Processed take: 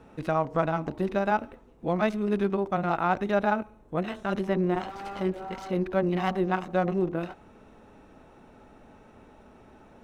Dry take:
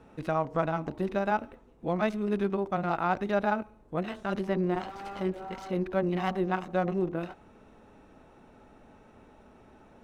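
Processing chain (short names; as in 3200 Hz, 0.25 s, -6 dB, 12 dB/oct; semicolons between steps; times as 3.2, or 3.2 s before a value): 2.73–4.9 notch 4700 Hz, Q 9.8; gain +2.5 dB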